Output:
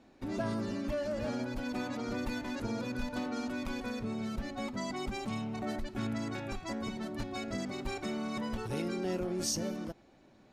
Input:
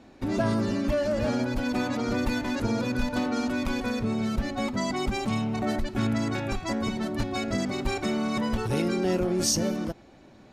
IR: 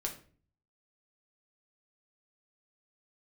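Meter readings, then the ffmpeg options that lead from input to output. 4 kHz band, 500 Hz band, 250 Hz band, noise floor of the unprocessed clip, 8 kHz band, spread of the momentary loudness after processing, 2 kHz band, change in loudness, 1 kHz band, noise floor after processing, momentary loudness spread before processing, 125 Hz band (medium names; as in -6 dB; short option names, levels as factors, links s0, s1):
-8.5 dB, -8.5 dB, -9.0 dB, -52 dBFS, -8.5 dB, 4 LU, -8.5 dB, -9.0 dB, -8.5 dB, -61 dBFS, 4 LU, -10.0 dB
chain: -af "equalizer=f=75:t=o:w=1.5:g=-3,volume=0.376"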